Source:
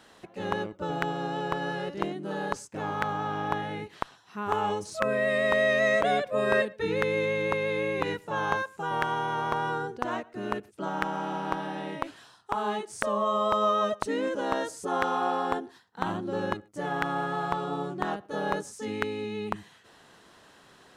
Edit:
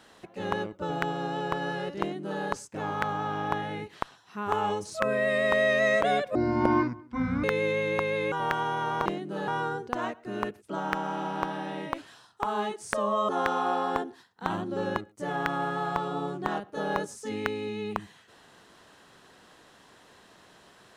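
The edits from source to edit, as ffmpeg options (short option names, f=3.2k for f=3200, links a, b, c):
-filter_complex "[0:a]asplit=7[a][b][c][d][e][f][g];[a]atrim=end=6.354[h];[b]atrim=start=6.35:end=6.97,asetpts=PTS-STARTPTS,asetrate=25137,aresample=44100,atrim=end_sample=47968,asetpts=PTS-STARTPTS[i];[c]atrim=start=6.966:end=7.852[j];[d]atrim=start=8.828:end=9.572[k];[e]atrim=start=1.998:end=2.422[l];[f]atrim=start=9.568:end=13.382[m];[g]atrim=start=14.848[n];[h][i]acrossfade=d=0.004:c1=hsin:c2=hsin[o];[o][j]acrossfade=d=0.004:c1=hsin:c2=hsin[p];[p][k]acrossfade=d=0.004:c1=hsin:c2=hsin[q];[q][l]acrossfade=d=0.004:c1=hsin:c2=hsin[r];[r][m]acrossfade=d=0.004:c1=hsin:c2=hsin[s];[s][n]acrossfade=d=0.004:c1=hsin:c2=hsin"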